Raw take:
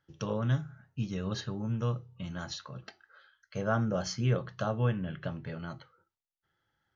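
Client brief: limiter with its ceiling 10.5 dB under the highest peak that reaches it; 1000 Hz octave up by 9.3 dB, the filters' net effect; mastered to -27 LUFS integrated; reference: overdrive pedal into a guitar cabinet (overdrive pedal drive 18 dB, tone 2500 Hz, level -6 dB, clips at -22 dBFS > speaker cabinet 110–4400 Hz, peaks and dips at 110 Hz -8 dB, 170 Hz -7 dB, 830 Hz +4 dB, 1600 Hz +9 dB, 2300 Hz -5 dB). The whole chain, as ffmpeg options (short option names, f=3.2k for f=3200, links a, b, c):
-filter_complex "[0:a]equalizer=f=1k:t=o:g=9,alimiter=limit=-22dB:level=0:latency=1,asplit=2[a][b];[b]highpass=f=720:p=1,volume=18dB,asoftclip=type=tanh:threshold=-22dB[c];[a][c]amix=inputs=2:normalize=0,lowpass=f=2.5k:p=1,volume=-6dB,highpass=110,equalizer=f=110:t=q:w=4:g=-8,equalizer=f=170:t=q:w=4:g=-7,equalizer=f=830:t=q:w=4:g=4,equalizer=f=1.6k:t=q:w=4:g=9,equalizer=f=2.3k:t=q:w=4:g=-5,lowpass=f=4.4k:w=0.5412,lowpass=f=4.4k:w=1.3066,volume=4.5dB"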